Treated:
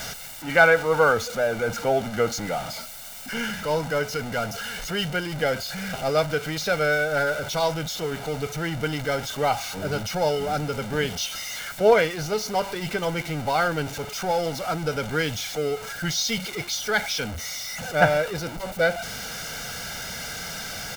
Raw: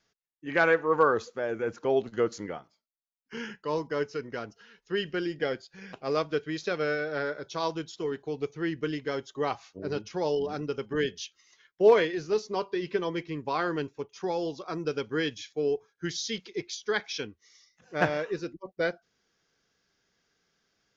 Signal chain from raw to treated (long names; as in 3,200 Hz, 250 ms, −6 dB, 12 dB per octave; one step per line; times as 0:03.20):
converter with a step at zero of −33.5 dBFS
comb filter 1.4 ms, depth 71%
level +4 dB